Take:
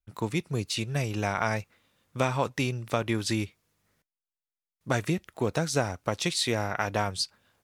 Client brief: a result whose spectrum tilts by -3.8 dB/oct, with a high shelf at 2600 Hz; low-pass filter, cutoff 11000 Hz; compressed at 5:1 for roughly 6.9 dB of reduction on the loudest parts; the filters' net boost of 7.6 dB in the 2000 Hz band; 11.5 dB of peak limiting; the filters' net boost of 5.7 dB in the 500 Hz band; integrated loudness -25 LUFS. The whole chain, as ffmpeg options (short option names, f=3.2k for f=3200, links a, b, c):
-af "lowpass=11k,equalizer=f=500:t=o:g=6.5,equalizer=f=2k:t=o:g=8,highshelf=f=2.6k:g=3.5,acompressor=threshold=-24dB:ratio=5,volume=8dB,alimiter=limit=-12dB:level=0:latency=1"